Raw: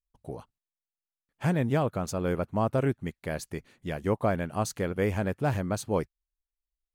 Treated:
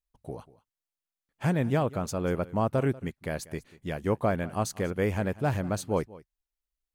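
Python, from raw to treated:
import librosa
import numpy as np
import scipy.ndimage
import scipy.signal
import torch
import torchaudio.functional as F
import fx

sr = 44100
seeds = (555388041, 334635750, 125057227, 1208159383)

y = x + 10.0 ** (-20.0 / 20.0) * np.pad(x, (int(190 * sr / 1000.0), 0))[:len(x)]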